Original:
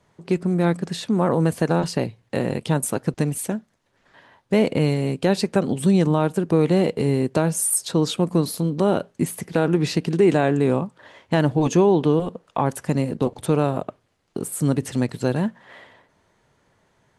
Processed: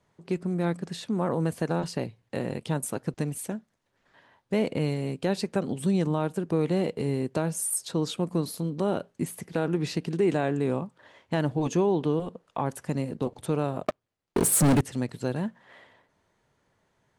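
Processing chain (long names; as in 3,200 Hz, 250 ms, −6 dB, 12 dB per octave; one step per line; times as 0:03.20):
0:13.85–0:14.81: leveller curve on the samples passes 5
level −7.5 dB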